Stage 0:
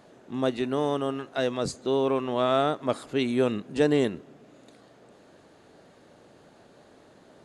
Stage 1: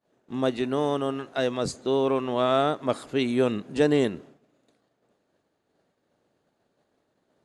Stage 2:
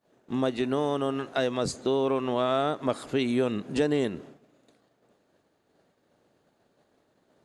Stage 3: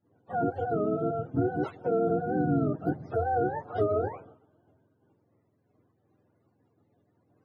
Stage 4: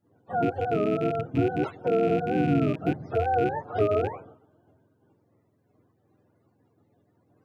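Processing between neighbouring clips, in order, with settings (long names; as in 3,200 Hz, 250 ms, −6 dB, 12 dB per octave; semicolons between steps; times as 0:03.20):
downward expander −42 dBFS; level +1 dB
downward compressor 2.5 to 1, threshold −29 dBFS, peak gain reduction 9 dB; level +4 dB
frequency axis turned over on the octave scale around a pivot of 430 Hz
loose part that buzzes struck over −34 dBFS, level −33 dBFS; level +3 dB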